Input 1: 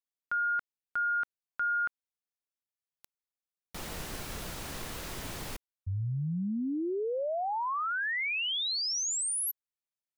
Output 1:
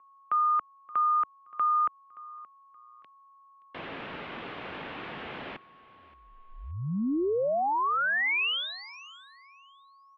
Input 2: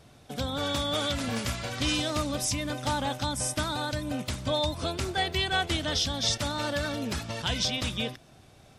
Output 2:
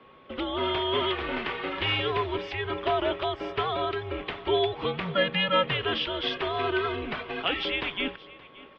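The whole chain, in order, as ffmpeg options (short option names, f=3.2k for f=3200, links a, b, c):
-af "aeval=exprs='val(0)+0.001*sin(2*PI*1300*n/s)':c=same,aecho=1:1:574|1148:0.1|0.028,highpass=f=380:t=q:w=0.5412,highpass=f=380:t=q:w=1.307,lowpass=f=3.3k:t=q:w=0.5176,lowpass=f=3.3k:t=q:w=0.7071,lowpass=f=3.3k:t=q:w=1.932,afreqshift=-200,volume=5dB"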